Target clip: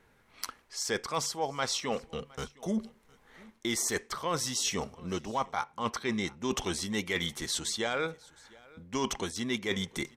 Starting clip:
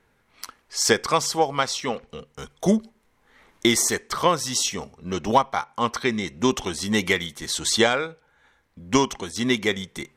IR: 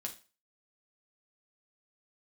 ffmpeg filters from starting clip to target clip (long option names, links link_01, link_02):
-af "areverse,acompressor=threshold=-28dB:ratio=12,areverse,aecho=1:1:713:0.0631"